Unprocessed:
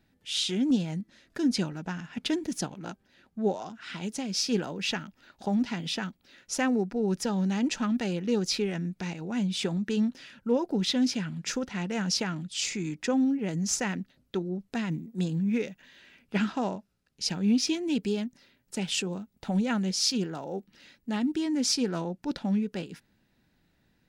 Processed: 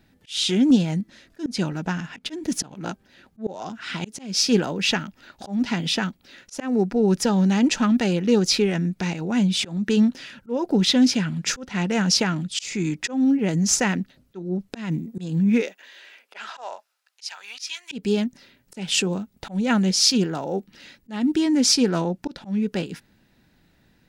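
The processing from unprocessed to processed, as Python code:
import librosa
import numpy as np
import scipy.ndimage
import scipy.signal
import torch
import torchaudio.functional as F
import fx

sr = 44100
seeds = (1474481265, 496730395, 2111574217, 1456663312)

y = fx.highpass(x, sr, hz=fx.line((15.6, 330.0), (17.91, 1300.0)), slope=24, at=(15.6, 17.91), fade=0.02)
y = fx.auto_swell(y, sr, attack_ms=227.0)
y = y * librosa.db_to_amplitude(8.5)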